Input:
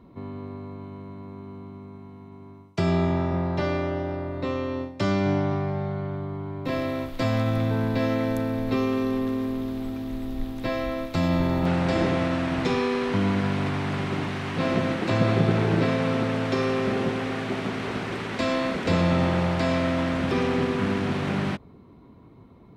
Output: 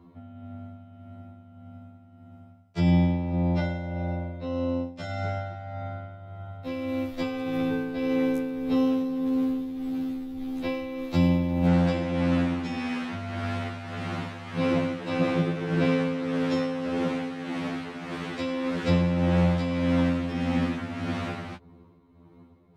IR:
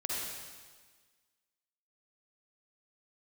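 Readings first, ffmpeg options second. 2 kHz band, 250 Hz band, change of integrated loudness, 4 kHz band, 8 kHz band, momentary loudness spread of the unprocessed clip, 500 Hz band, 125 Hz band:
−4.5 dB, −0.5 dB, −2.0 dB, −4.5 dB, can't be measured, 14 LU, −4.0 dB, −2.0 dB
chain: -af "tremolo=f=1.7:d=0.54,afftfilt=real='re*2*eq(mod(b,4),0)':imag='im*2*eq(mod(b,4),0)':win_size=2048:overlap=0.75"

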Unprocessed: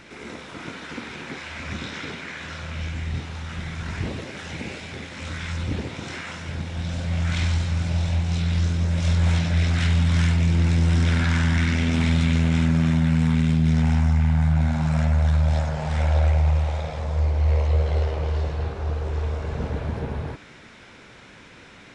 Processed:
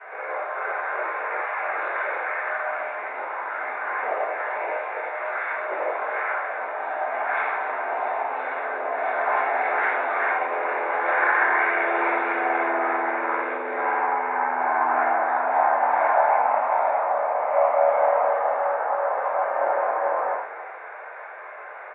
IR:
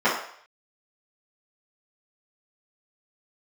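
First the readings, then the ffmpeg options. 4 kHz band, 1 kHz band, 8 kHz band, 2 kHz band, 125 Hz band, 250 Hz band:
below −15 dB, +15.5 dB, below −40 dB, +8.5 dB, below −40 dB, −15.0 dB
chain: -filter_complex "[0:a]asplit=4[link_01][link_02][link_03][link_04];[link_02]adelay=284,afreqshift=100,volume=-17dB[link_05];[link_03]adelay=568,afreqshift=200,volume=-26.4dB[link_06];[link_04]adelay=852,afreqshift=300,volume=-35.7dB[link_07];[link_01][link_05][link_06][link_07]amix=inputs=4:normalize=0[link_08];[1:a]atrim=start_sample=2205,afade=type=out:start_time=0.14:duration=0.01,atrim=end_sample=6615,asetrate=29547,aresample=44100[link_09];[link_08][link_09]afir=irnorm=-1:irlink=0,highpass=frequency=500:width_type=q:width=0.5412,highpass=frequency=500:width_type=q:width=1.307,lowpass=frequency=2100:width_type=q:width=0.5176,lowpass=frequency=2100:width_type=q:width=0.7071,lowpass=frequency=2100:width_type=q:width=1.932,afreqshift=95,volume=-8.5dB"

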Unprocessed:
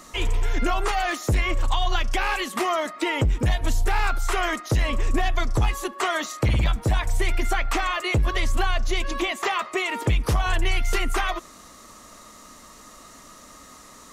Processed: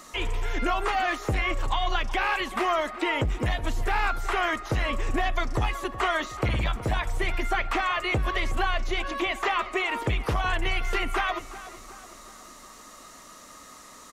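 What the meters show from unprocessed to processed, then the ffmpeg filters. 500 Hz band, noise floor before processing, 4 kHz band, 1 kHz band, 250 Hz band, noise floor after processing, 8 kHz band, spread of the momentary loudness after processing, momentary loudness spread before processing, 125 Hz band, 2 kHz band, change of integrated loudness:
−1.5 dB, −47 dBFS, −2.5 dB, −0.5 dB, −3.0 dB, −48 dBFS, −8.0 dB, 20 LU, 3 LU, −5.5 dB, −0.5 dB, −2.5 dB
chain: -filter_complex "[0:a]acrossover=split=3500[link_01][link_02];[link_02]acompressor=threshold=-46dB:ratio=4:attack=1:release=60[link_03];[link_01][link_03]amix=inputs=2:normalize=0,lowshelf=frequency=290:gain=-6.5,asplit=2[link_04][link_05];[link_05]adelay=370,lowpass=frequency=3000:poles=1,volume=-15dB,asplit=2[link_06][link_07];[link_07]adelay=370,lowpass=frequency=3000:poles=1,volume=0.51,asplit=2[link_08][link_09];[link_09]adelay=370,lowpass=frequency=3000:poles=1,volume=0.51,asplit=2[link_10][link_11];[link_11]adelay=370,lowpass=frequency=3000:poles=1,volume=0.51,asplit=2[link_12][link_13];[link_13]adelay=370,lowpass=frequency=3000:poles=1,volume=0.51[link_14];[link_06][link_08][link_10][link_12][link_14]amix=inputs=5:normalize=0[link_15];[link_04][link_15]amix=inputs=2:normalize=0"

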